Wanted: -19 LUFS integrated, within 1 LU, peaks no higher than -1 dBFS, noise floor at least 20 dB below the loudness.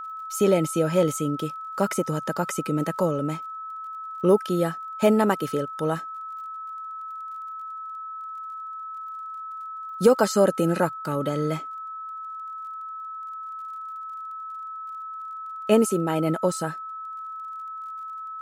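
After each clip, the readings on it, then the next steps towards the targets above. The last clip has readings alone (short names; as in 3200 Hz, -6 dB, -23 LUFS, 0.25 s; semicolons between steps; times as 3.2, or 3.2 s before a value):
ticks 32/s; steady tone 1300 Hz; tone level -33 dBFS; loudness -27.0 LUFS; peak -6.5 dBFS; loudness target -19.0 LUFS
-> de-click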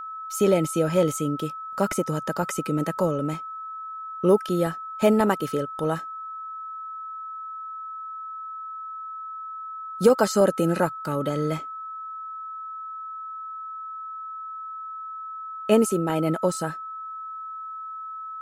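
ticks 0.054/s; steady tone 1300 Hz; tone level -33 dBFS
-> notch 1300 Hz, Q 30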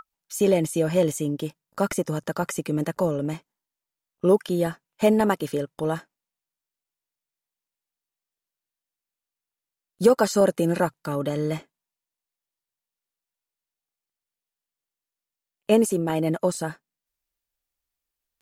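steady tone none; loudness -24.0 LUFS; peak -6.5 dBFS; loudness target -19.0 LUFS
-> gain +5 dB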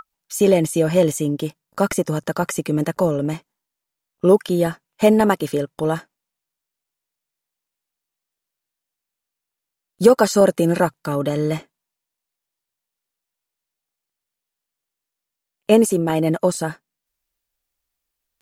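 loudness -19.0 LUFS; peak -1.5 dBFS; noise floor -84 dBFS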